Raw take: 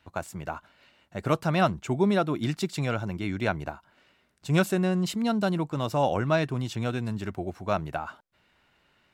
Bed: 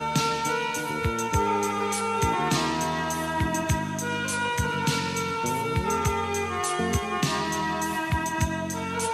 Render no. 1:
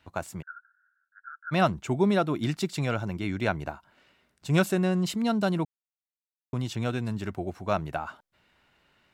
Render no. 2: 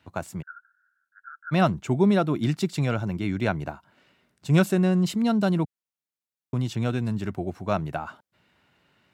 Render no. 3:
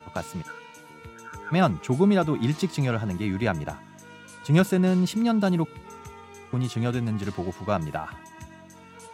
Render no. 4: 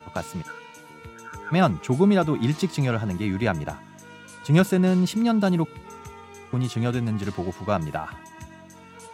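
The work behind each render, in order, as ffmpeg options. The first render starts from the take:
-filter_complex "[0:a]asplit=3[s0][s1][s2];[s0]afade=t=out:st=0.41:d=0.02[s3];[s1]asuperpass=centerf=1500:order=8:qfactor=4.8,afade=t=in:st=0.41:d=0.02,afade=t=out:st=1.51:d=0.02[s4];[s2]afade=t=in:st=1.51:d=0.02[s5];[s3][s4][s5]amix=inputs=3:normalize=0,asplit=3[s6][s7][s8];[s6]atrim=end=5.65,asetpts=PTS-STARTPTS,afade=t=out:st=5.646:d=0.004:c=hsin[s9];[s7]atrim=start=5.65:end=6.53,asetpts=PTS-STARTPTS,volume=0[s10];[s8]atrim=start=6.53,asetpts=PTS-STARTPTS,afade=t=in:d=0.004:c=hsin[s11];[s9][s10][s11]concat=n=3:v=0:a=1"
-af "highpass=110,lowshelf=f=230:g=8.5"
-filter_complex "[1:a]volume=0.126[s0];[0:a][s0]amix=inputs=2:normalize=0"
-af "volume=1.19"

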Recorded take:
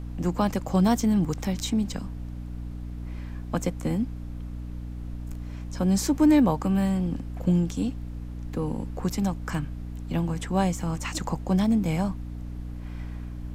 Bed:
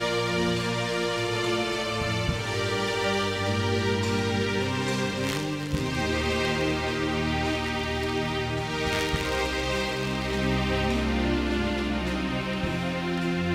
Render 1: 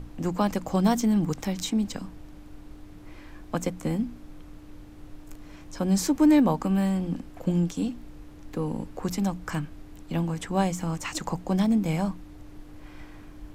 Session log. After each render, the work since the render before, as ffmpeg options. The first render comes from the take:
-af "bandreject=f=60:t=h:w=6,bandreject=f=120:t=h:w=6,bandreject=f=180:t=h:w=6,bandreject=f=240:t=h:w=6"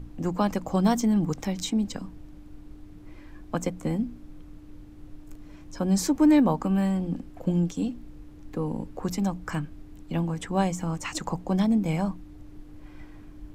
-af "afftdn=nr=6:nf=-46"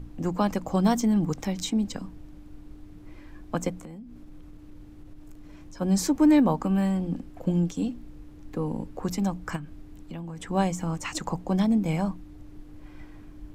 -filter_complex "[0:a]asplit=3[s0][s1][s2];[s0]afade=t=out:st=3.8:d=0.02[s3];[s1]acompressor=threshold=0.0112:ratio=10:attack=3.2:release=140:knee=1:detection=peak,afade=t=in:st=3.8:d=0.02,afade=t=out:st=5.8:d=0.02[s4];[s2]afade=t=in:st=5.8:d=0.02[s5];[s3][s4][s5]amix=inputs=3:normalize=0,asettb=1/sr,asplit=3[s6][s7][s8];[s6]atrim=end=9.564[s9];[s7]atrim=start=9.56:end=10.48,asetpts=PTS-STARTPTS,afade=t=in:d=0.004:c=qsin,afade=t=out:st=0.916:d=0.004:c=qsin,acompressor=threshold=0.0178:ratio=4:attack=3.2:release=140:knee=1:detection=peak[s10];[s8]atrim=start=10.476[s11];[s9][s10]acrossfade=d=0.004:c1=hsin:c2=qsin[s12];[s12][s11]acrossfade=d=0.004:c1=qsin:c2=hsin"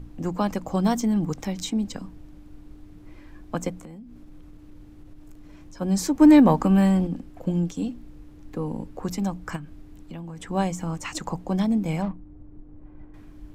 -filter_complex "[0:a]asplit=3[s0][s1][s2];[s0]afade=t=out:st=6.2:d=0.02[s3];[s1]acontrast=54,afade=t=in:st=6.2:d=0.02,afade=t=out:st=7.06:d=0.02[s4];[s2]afade=t=in:st=7.06:d=0.02[s5];[s3][s4][s5]amix=inputs=3:normalize=0,asettb=1/sr,asplit=3[s6][s7][s8];[s6]atrim=end=12.024[s9];[s7]atrim=start=12.02:end=13.14,asetpts=PTS-STARTPTS,afade=t=in:d=0.004:c=qsin,afade=t=out:st=1.116:d=0.004:c=qsin,adynamicsmooth=sensitivity=5:basefreq=760[s10];[s8]atrim=start=13.136[s11];[s9][s10]acrossfade=d=0.004:c1=hsin:c2=qsin[s12];[s12][s11]acrossfade=d=0.004:c1=qsin:c2=hsin"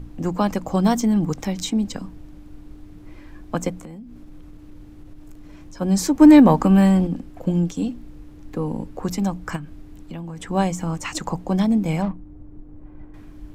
-af "volume=1.58,alimiter=limit=0.708:level=0:latency=1"

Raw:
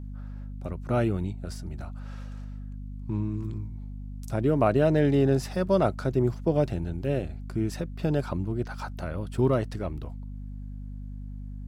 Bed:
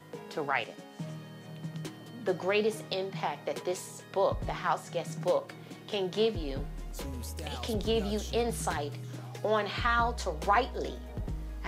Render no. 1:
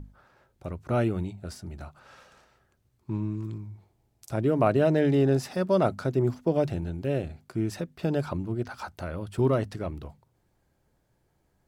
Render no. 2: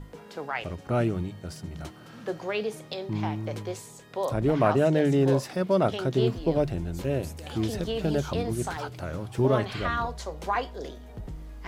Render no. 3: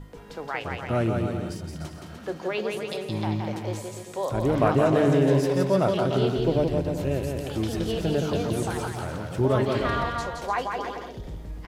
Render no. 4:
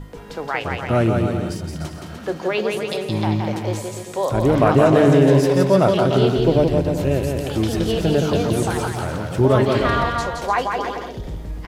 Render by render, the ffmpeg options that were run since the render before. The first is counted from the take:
-af "bandreject=f=50:t=h:w=6,bandreject=f=100:t=h:w=6,bandreject=f=150:t=h:w=6,bandreject=f=200:t=h:w=6,bandreject=f=250:t=h:w=6"
-filter_complex "[1:a]volume=0.794[s0];[0:a][s0]amix=inputs=2:normalize=0"
-af "aecho=1:1:170|297.5|393.1|464.8|518.6:0.631|0.398|0.251|0.158|0.1"
-af "volume=2.24,alimiter=limit=0.708:level=0:latency=1"

